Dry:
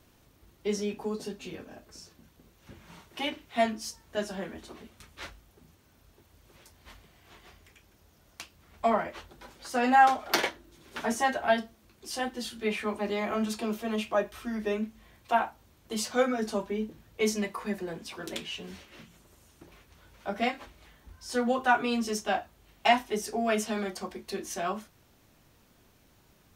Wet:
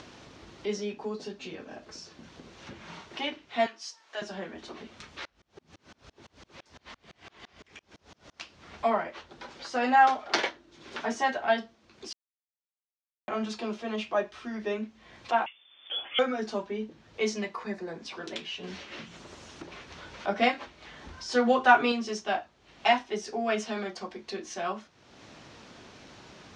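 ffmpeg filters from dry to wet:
ffmpeg -i in.wav -filter_complex "[0:a]asettb=1/sr,asplit=3[link_01][link_02][link_03];[link_01]atrim=end=3.664[link_04];[link_02]atrim=start=3.66:end=4.22,asetpts=PTS-STARTPTS,afade=type=in:duration=0.004:curve=qsin,afade=type=out:start_time=0.556:duration=0.004:curve=qsin,highpass=770[link_05];[link_03]atrim=start=4.216[link_06];[link_04][link_05]acrossfade=duration=0.004:curve1=hsin:curve2=qsin[link_07];[link_07][link_06]acrossfade=duration=0.004:curve1=qsin:curve2=hsin,asettb=1/sr,asplit=3[link_08][link_09][link_10];[link_08]atrim=end=5.254[link_11];[link_09]atrim=start=5.25:end=8.41,asetpts=PTS-STARTPTS,afade=type=in:duration=0.004:curve=qsin,afade=type=out:start_time=3.156:duration=0.004:curve=qsin,aeval=exprs='val(0)*pow(10,-33*if(lt(mod(-5.9*n/s,1),2*abs(-5.9)/1000),1-mod(-5.9*n/s,1)/(2*abs(-5.9)/1000),(mod(-5.9*n/s,1)-2*abs(-5.9)/1000)/(1-2*abs(-5.9)/1000))/20)':channel_layout=same[link_12];[link_10]atrim=start=8.406[link_13];[link_11][link_12]acrossfade=duration=0.004:curve1=hsin:curve2=qsin[link_14];[link_14][link_13]acrossfade=duration=0.004:curve1=qsin:curve2=hsin,asettb=1/sr,asplit=3[link_15][link_16][link_17];[link_15]atrim=end=15.464[link_18];[link_16]atrim=start=15.46:end=16.19,asetpts=PTS-STARTPTS,afade=type=in:duration=0.004:curve=qsin,afade=type=out:start_time=0.726:duration=0.004:curve=qsin,lowpass=frequency=3100:width_type=q:width=0.5098,lowpass=frequency=3100:width_type=q:width=0.6013,lowpass=frequency=3100:width_type=q:width=0.9,lowpass=frequency=3100:width_type=q:width=2.563,afreqshift=-3600[link_19];[link_17]atrim=start=16.186[link_20];[link_18][link_19]acrossfade=duration=0.004:curve1=hsin:curve2=qsin[link_21];[link_21][link_20]acrossfade=duration=0.004:curve1=qsin:curve2=hsin,asettb=1/sr,asplit=3[link_22][link_23][link_24];[link_22]atrim=end=17.634[link_25];[link_23]atrim=start=17.63:end=18.03,asetpts=PTS-STARTPTS,afade=type=in:duration=0.004:curve=qsin,afade=type=out:start_time=0.396:duration=0.004:curve=qsin,equalizer=frequency=3000:width_type=o:width=0.26:gain=-13[link_26];[link_24]atrim=start=18.026[link_27];[link_25][link_26]acrossfade=duration=0.004:curve1=hsin:curve2=qsin[link_28];[link_28][link_27]acrossfade=duration=0.004:curve1=qsin:curve2=hsin,asettb=1/sr,asplit=3[link_29][link_30][link_31];[link_29]atrim=end=18.634[link_32];[link_30]atrim=start=18.63:end=21.92,asetpts=PTS-STARTPTS,afade=type=in:duration=0.004:curve=qsin,afade=type=out:start_time=3.286:duration=0.004:curve=qsin,acontrast=34[link_33];[link_31]atrim=start=21.916[link_34];[link_32][link_33]acrossfade=duration=0.004:curve1=hsin:curve2=qsin[link_35];[link_35][link_34]acrossfade=duration=0.004:curve1=qsin:curve2=hsin,asplit=3[link_36][link_37][link_38];[link_36]atrim=end=12.13,asetpts=PTS-STARTPTS,afade=type=out:start_time=12.126:duration=0.004:curve=hsin[link_39];[link_37]atrim=start=12.13:end=13.28,asetpts=PTS-STARTPTS,volume=0[link_40];[link_38]atrim=start=13.28,asetpts=PTS-STARTPTS,afade=type=in:duration=0.004:curve=hsin[link_41];[link_39][link_40][link_41]concat=n=3:v=0:a=1,highpass=frequency=230:poles=1,acompressor=mode=upward:threshold=-35dB:ratio=2.5,lowpass=frequency=6000:width=0.5412,lowpass=frequency=6000:width=1.3066" out.wav

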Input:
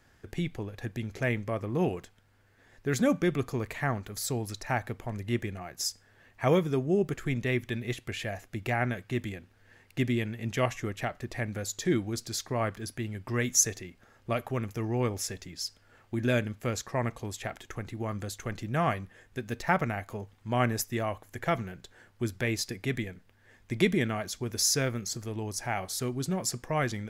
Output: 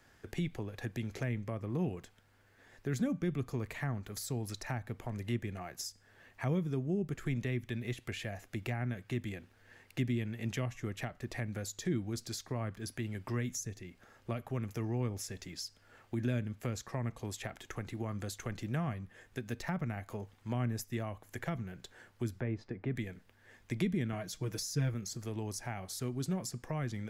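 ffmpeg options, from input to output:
ffmpeg -i in.wav -filter_complex "[0:a]asettb=1/sr,asplit=3[link_01][link_02][link_03];[link_01]atrim=end=22.404[link_04];[link_02]atrim=start=22.4:end=22.96,asetpts=PTS-STARTPTS,afade=type=in:duration=0.004:curve=qsin,afade=type=out:start_time=0.556:duration=0.004:curve=qsin,lowpass=1300[link_05];[link_03]atrim=start=22.956[link_06];[link_04][link_05]acrossfade=duration=0.004:curve1=hsin:curve2=qsin[link_07];[link_07][link_06]acrossfade=duration=0.004:curve1=qsin:curve2=hsin,asettb=1/sr,asplit=3[link_08][link_09][link_10];[link_08]atrim=end=24.124[link_11];[link_09]atrim=start=24.12:end=24.94,asetpts=PTS-STARTPTS,afade=type=in:duration=0.004:curve=qsin,afade=type=out:start_time=0.816:duration=0.004:curve=qsin,aecho=1:1:6.4:0.88,atrim=end_sample=36162[link_12];[link_10]atrim=start=24.936[link_13];[link_11][link_12]acrossfade=duration=0.004:curve1=hsin:curve2=qsin[link_14];[link_14][link_13]acrossfade=duration=0.004:curve1=qsin:curve2=hsin,lowshelf=frequency=170:gain=-4.5,acrossover=split=240[link_15][link_16];[link_16]acompressor=threshold=-40dB:ratio=6[link_17];[link_15][link_17]amix=inputs=2:normalize=0" out.wav

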